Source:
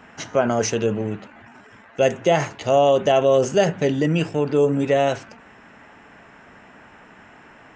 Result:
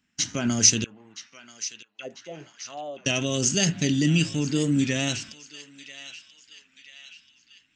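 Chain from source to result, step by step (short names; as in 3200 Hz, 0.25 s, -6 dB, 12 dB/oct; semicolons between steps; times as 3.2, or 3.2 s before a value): gate -39 dBFS, range -24 dB; EQ curve 290 Hz 0 dB, 470 Hz -17 dB, 870 Hz -16 dB, 4600 Hz +11 dB; 0.84–3.07 auto-wah 330–4200 Hz, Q 4.4, down, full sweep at -18.5 dBFS; narrowing echo 0.984 s, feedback 60%, band-pass 2800 Hz, level -12 dB; record warp 33 1/3 rpm, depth 100 cents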